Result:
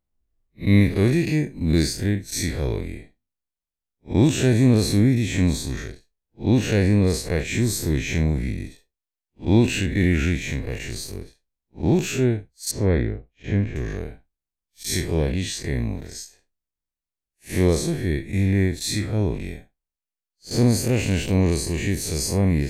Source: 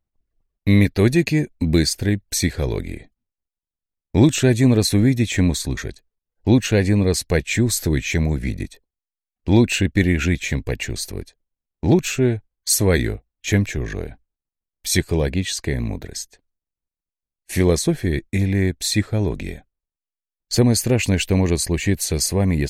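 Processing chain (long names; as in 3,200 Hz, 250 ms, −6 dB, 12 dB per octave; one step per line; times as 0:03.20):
spectrum smeared in time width 109 ms
0:12.71–0:13.76: head-to-tape spacing loss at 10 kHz 31 dB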